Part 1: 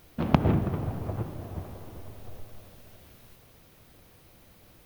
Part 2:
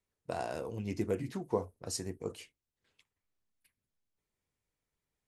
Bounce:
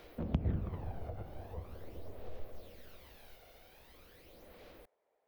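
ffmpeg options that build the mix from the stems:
ffmpeg -i stem1.wav -i stem2.wav -filter_complex "[0:a]aphaser=in_gain=1:out_gain=1:delay=1.4:decay=0.5:speed=0.43:type=sinusoidal,volume=-5.5dB[link_01];[1:a]acompressor=mode=upward:threshold=-37dB:ratio=2.5,bandpass=frequency=680:width_type=q:width=2.6:csg=0,volume=-12dB[link_02];[link_01][link_02]amix=inputs=2:normalize=0,equalizer=frequency=125:width_type=o:width=1:gain=-12,equalizer=frequency=500:width_type=o:width=1:gain=9,equalizer=frequency=2000:width_type=o:width=1:gain=4,equalizer=frequency=4000:width_type=o:width=1:gain=4,equalizer=frequency=8000:width_type=o:width=1:gain=-5,acrossover=split=170[link_03][link_04];[link_04]acompressor=threshold=-52dB:ratio=2.5[link_05];[link_03][link_05]amix=inputs=2:normalize=0" out.wav

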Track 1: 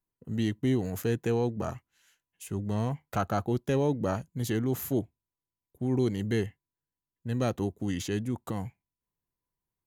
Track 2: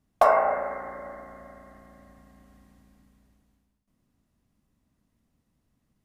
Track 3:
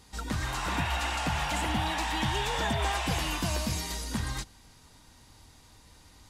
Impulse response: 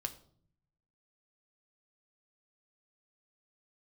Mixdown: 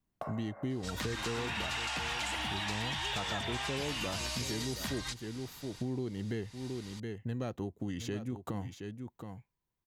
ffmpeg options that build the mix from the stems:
-filter_complex "[0:a]equalizer=frequency=11000:width_type=o:width=1.3:gain=-8,volume=1.5dB,asplit=2[link_01][link_02];[link_02]volume=-13dB[link_03];[1:a]acompressor=threshold=-27dB:ratio=6,volume=-11.5dB[link_04];[2:a]equalizer=frequency=3500:width=0.32:gain=12.5,adelay=700,volume=-3dB[link_05];[link_03]aecho=0:1:721:1[link_06];[link_01][link_04][link_05][link_06]amix=inputs=4:normalize=0,acompressor=threshold=-34dB:ratio=5"

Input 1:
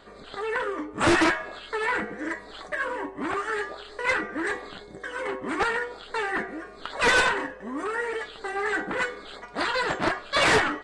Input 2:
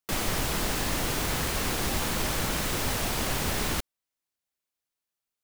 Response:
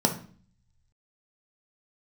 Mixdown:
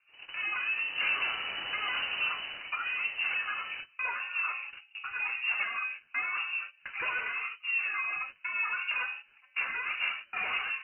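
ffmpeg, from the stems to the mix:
-filter_complex "[0:a]acompressor=threshold=-28dB:ratio=12,flanger=delay=3.3:depth=5.9:regen=-45:speed=0.56:shape=triangular,volume=-5dB,asplit=2[link_01][link_02];[link_02]volume=-9.5dB[link_03];[1:a]volume=-8dB,afade=type=in:start_time=0.76:duration=0.57:silence=0.354813,afade=type=out:start_time=2.13:duration=0.57:silence=0.375837[link_04];[2:a]atrim=start_sample=2205[link_05];[link_03][link_05]afir=irnorm=-1:irlink=0[link_06];[link_01][link_04][link_06]amix=inputs=3:normalize=0,agate=range=-18dB:threshold=-40dB:ratio=16:detection=peak,lowpass=frequency=2600:width_type=q:width=0.5098,lowpass=frequency=2600:width_type=q:width=0.6013,lowpass=frequency=2600:width_type=q:width=0.9,lowpass=frequency=2600:width_type=q:width=2.563,afreqshift=-3000"

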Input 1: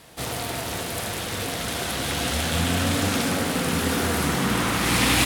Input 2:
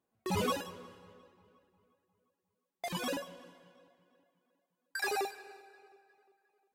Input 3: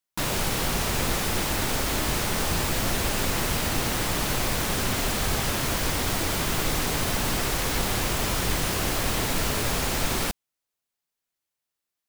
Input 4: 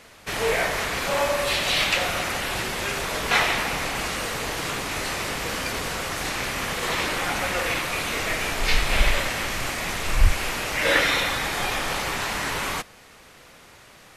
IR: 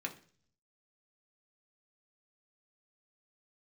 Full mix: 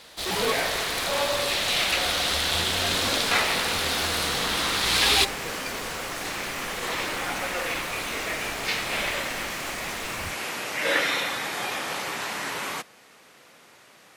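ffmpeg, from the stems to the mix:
-filter_complex "[0:a]equalizer=frequency=125:width_type=o:width=1:gain=-10,equalizer=frequency=250:width_type=o:width=1:gain=-9,equalizer=frequency=4000:width_type=o:width=1:gain=11,volume=-4.5dB[link_01];[1:a]highpass=240,volume=3dB[link_02];[2:a]volume=-17.5dB[link_03];[3:a]highpass=180,volume=-3.5dB[link_04];[link_01][link_02][link_03][link_04]amix=inputs=4:normalize=0"

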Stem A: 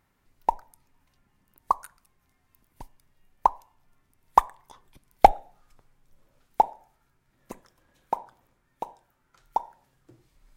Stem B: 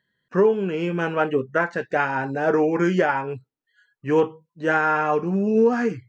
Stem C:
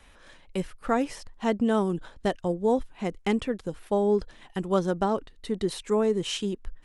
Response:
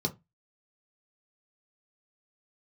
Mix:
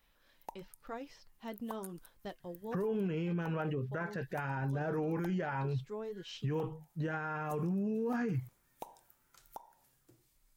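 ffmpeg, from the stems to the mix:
-filter_complex "[0:a]dynaudnorm=framelen=510:gausssize=5:maxgain=11.5dB,aemphasis=mode=production:type=75kf,acompressor=threshold=-24dB:ratio=6,volume=-14.5dB[link_01];[1:a]equalizer=frequency=140:width_type=o:width=0.79:gain=14,adelay=2400,volume=-3dB[link_02];[2:a]lowpass=frequency=5000:width_type=q:width=1.8,flanger=delay=5.7:depth=2.6:regen=-60:speed=0.95:shape=triangular,volume=-14dB[link_03];[link_02][link_03]amix=inputs=2:normalize=0,lowpass=8000,alimiter=limit=-19.5dB:level=0:latency=1:release=438,volume=0dB[link_04];[link_01][link_04]amix=inputs=2:normalize=0,alimiter=level_in=4dB:limit=-24dB:level=0:latency=1:release=34,volume=-4dB"

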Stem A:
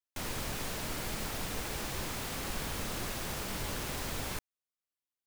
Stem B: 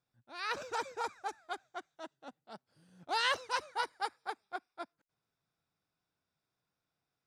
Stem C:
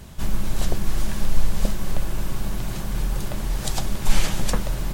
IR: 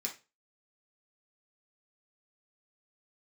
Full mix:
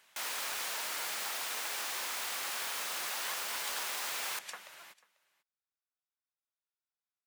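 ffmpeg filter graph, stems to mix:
-filter_complex "[0:a]volume=3dB[link_01];[1:a]volume=-13.5dB[link_02];[2:a]alimiter=limit=-9dB:level=0:latency=1:release=349,equalizer=frequency=2200:width_type=o:width=1.4:gain=7.5,volume=-16.5dB,asplit=2[link_03][link_04];[link_04]volume=-23dB,aecho=0:1:492:1[link_05];[link_01][link_02][link_03][link_05]amix=inputs=4:normalize=0,highpass=900"

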